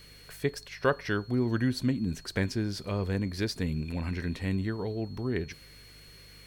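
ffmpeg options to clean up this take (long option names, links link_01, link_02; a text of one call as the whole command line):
ffmpeg -i in.wav -af "bandreject=frequency=50.5:width_type=h:width=4,bandreject=frequency=101:width_type=h:width=4,bandreject=frequency=151.5:width_type=h:width=4,bandreject=frequency=4300:width=30" out.wav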